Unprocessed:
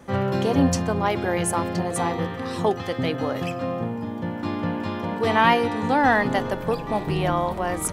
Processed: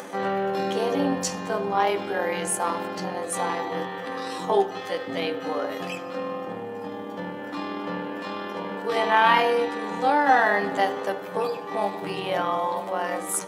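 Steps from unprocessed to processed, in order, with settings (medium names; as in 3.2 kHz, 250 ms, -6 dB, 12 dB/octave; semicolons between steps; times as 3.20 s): high-pass 370 Hz 12 dB/octave; upward compressor, threshold -28 dBFS; granular stretch 1.7×, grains 50 ms; on a send: reverberation RT60 0.80 s, pre-delay 3 ms, DRR 8.5 dB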